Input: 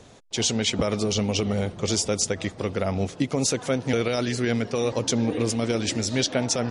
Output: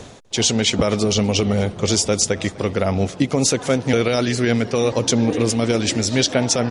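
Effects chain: reverse; upward compressor, threshold -32 dBFS; reverse; echo 0.248 s -22 dB; gain +6 dB

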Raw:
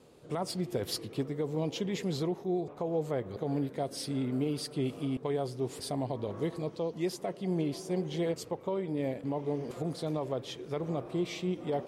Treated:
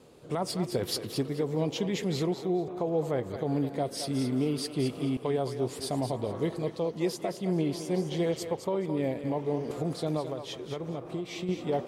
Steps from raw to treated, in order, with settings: 10.2–11.49 compressor, threshold -35 dBFS, peak gain reduction 8.5 dB; on a send: thinning echo 0.215 s, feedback 22%, level -8 dB; on the sum: gain +3 dB

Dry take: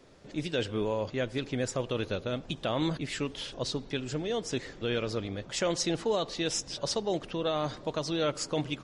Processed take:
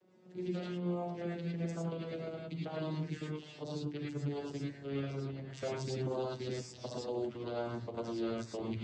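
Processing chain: vocoder on a gliding note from F#3, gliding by -9 st; non-linear reverb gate 0.13 s rising, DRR -4.5 dB; harmonic-percussive split harmonic -9 dB; gain -2 dB

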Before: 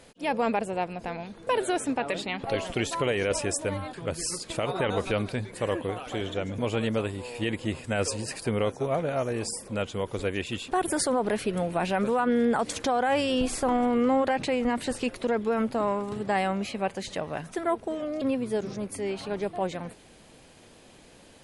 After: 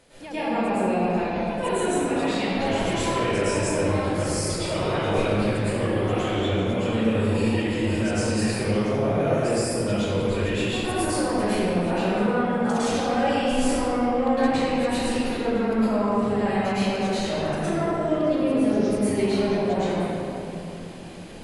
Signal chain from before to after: in parallel at 0 dB: level quantiser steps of 15 dB; on the sum: limiter -22.5 dBFS, peak gain reduction 11 dB; reverb RT60 3.0 s, pre-delay 0.1 s, DRR -15.5 dB; gain -8.5 dB

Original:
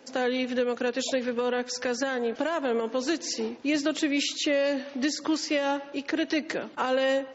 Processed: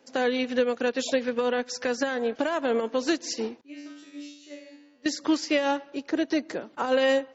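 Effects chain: 3.61–5.06 resonator 97 Hz, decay 0.88 s, harmonics all, mix 100%; 5.93–6.92 dynamic EQ 2600 Hz, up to -7 dB, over -45 dBFS, Q 0.91; upward expander 1.5:1, over -44 dBFS; gain +3.5 dB

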